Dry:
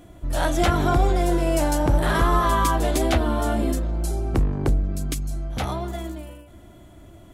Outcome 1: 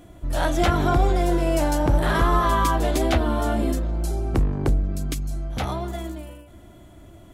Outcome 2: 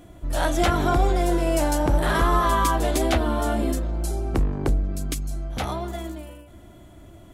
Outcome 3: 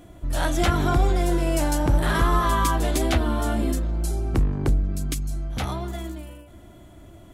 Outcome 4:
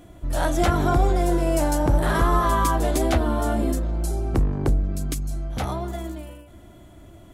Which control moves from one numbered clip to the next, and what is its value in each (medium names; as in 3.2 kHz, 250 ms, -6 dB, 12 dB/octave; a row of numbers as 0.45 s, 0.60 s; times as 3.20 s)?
dynamic bell, frequency: 9.4 kHz, 110 Hz, 610 Hz, 3 kHz